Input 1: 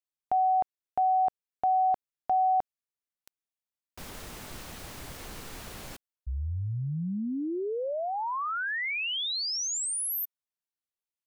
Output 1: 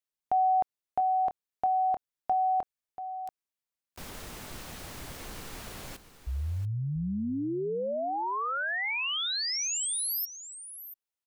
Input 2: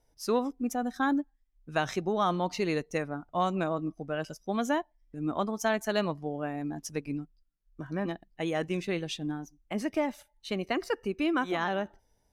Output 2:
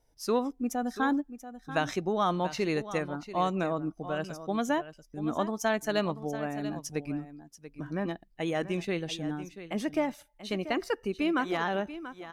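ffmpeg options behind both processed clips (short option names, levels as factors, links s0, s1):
-af "aecho=1:1:686:0.224"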